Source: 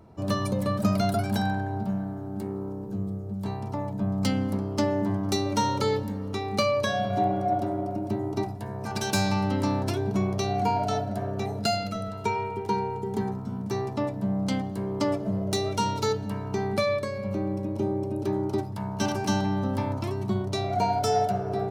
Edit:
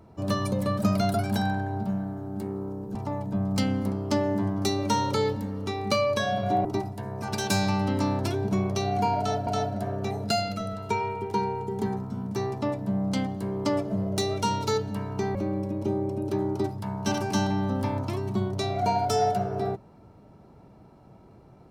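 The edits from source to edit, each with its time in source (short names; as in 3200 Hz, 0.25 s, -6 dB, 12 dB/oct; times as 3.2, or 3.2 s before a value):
2.95–3.62 cut
7.32–8.28 cut
10.82–11.1 loop, 2 plays
16.7–17.29 cut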